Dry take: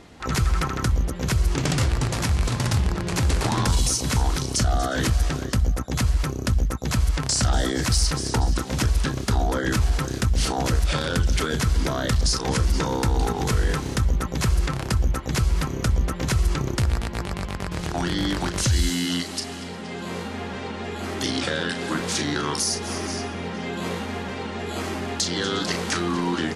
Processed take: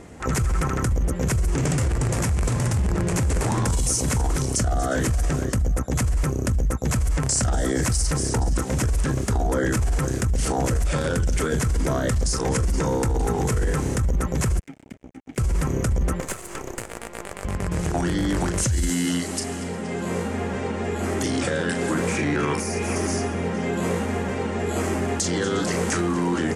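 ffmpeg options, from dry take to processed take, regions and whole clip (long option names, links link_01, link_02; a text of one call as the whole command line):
ffmpeg -i in.wav -filter_complex "[0:a]asettb=1/sr,asplit=3[link_01][link_02][link_03];[link_01]atrim=end=14.594[link_04];[link_02]atrim=start=14.59:end=15.38,asetpts=PTS-STARTPTS,afade=type=in:duration=0.004:curve=qsin,afade=type=out:start_time=0.786:duration=0.004:curve=qsin,asplit=3[link_05][link_06][link_07];[link_05]bandpass=frequency=270:width_type=q:width=8,volume=0dB[link_08];[link_06]bandpass=frequency=2290:width_type=q:width=8,volume=-6dB[link_09];[link_07]bandpass=frequency=3010:width_type=q:width=8,volume=-9dB[link_10];[link_08][link_09][link_10]amix=inputs=3:normalize=0,tremolo=f=66:d=0.261,aeval=exprs='sgn(val(0))*max(abs(val(0))-0.00708,0)':channel_layout=same[link_11];[link_03]atrim=start=15.376[link_12];[link_04][link_11]acrossfade=duration=0.004:curve1=hsin:curve2=qsin[link_13];[link_13][link_12]acrossfade=duration=0.004:curve1=qsin:curve2=hsin,asettb=1/sr,asplit=3[link_14][link_15][link_16];[link_14]atrim=end=16.204[link_17];[link_15]atrim=start=16.2:end=17.45,asetpts=PTS-STARTPTS,afade=type=in:duration=0.004:curve=qsin,afade=type=out:start_time=1.246:duration=0.004:curve=qsin,highpass=400,bandreject=frequency=5500:width=6.8,aeval=exprs='max(val(0),0)':channel_layout=same[link_18];[link_16]atrim=start=17.446[link_19];[link_17][link_18]acrossfade=duration=0.004:curve1=hsin:curve2=qsin[link_20];[link_20][link_19]acrossfade=duration=0.004:curve1=qsin:curve2=hsin,asettb=1/sr,asplit=3[link_21][link_22][link_23];[link_21]atrim=end=22.074[link_24];[link_22]atrim=start=22.07:end=22.96,asetpts=PTS-STARTPTS,afade=type=in:duration=0.004:curve=qsin,afade=type=out:start_time=0.886:duration=0.004:curve=qsin,acrossover=split=2500[link_25][link_26];[link_26]acompressor=threshold=-35dB:ratio=4:attack=1:release=60[link_27];[link_25][link_27]amix=inputs=2:normalize=0,equalizer=frequency=2400:width=4.2:gain=11.5[link_28];[link_23]atrim=start=22.956[link_29];[link_24][link_28]acrossfade=duration=0.004:curve1=hsin:curve2=qsin[link_30];[link_30][link_29]acrossfade=duration=0.004:curve1=qsin:curve2=hsin,equalizer=frequency=93:width=0.32:gain=6,alimiter=limit=-16.5dB:level=0:latency=1:release=10,equalizer=frequency=500:width_type=o:width=1:gain=5,equalizer=frequency=2000:width_type=o:width=1:gain=3,equalizer=frequency=4000:width_type=o:width=1:gain=-9,equalizer=frequency=8000:width_type=o:width=1:gain=9" out.wav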